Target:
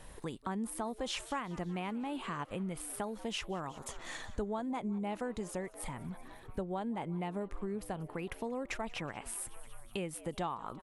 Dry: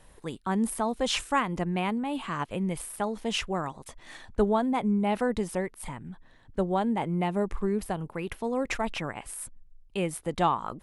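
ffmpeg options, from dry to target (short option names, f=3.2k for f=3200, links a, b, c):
-filter_complex "[0:a]asplit=6[a][b][c][d][e][f];[b]adelay=185,afreqshift=110,volume=-22.5dB[g];[c]adelay=370,afreqshift=220,volume=-26.2dB[h];[d]adelay=555,afreqshift=330,volume=-30dB[i];[e]adelay=740,afreqshift=440,volume=-33.7dB[j];[f]adelay=925,afreqshift=550,volume=-37.5dB[k];[a][g][h][i][j][k]amix=inputs=6:normalize=0,acompressor=threshold=-43dB:ratio=3,asettb=1/sr,asplit=3[l][m][n];[l]atrim=end=3.704[o];[m]atrim=start=3.7:end=5.76,asetpts=PTS-STARTPTS,afade=t=in:d=0.004:c=qsin,afade=t=out:st=2.056:d=0.004:c=qsin,equalizer=f=6.9k:t=o:w=0.25:g=8[p];[n]atrim=start=5.756[q];[o][p]acrossfade=d=0.004:c1=hsin:c2=qsin[r];[r][q]acrossfade=d=0.004:c1=qsin:c2=hsin,volume=3.5dB"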